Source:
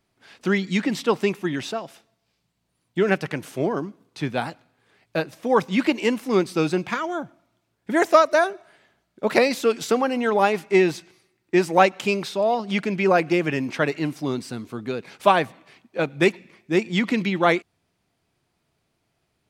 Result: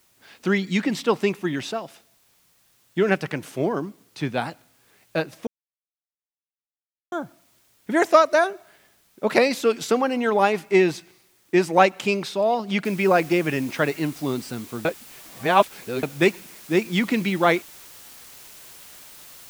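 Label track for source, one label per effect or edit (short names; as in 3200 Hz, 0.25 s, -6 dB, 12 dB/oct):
5.470000	7.120000	mute
12.850000	12.850000	noise floor step -62 dB -45 dB
14.850000	16.030000	reverse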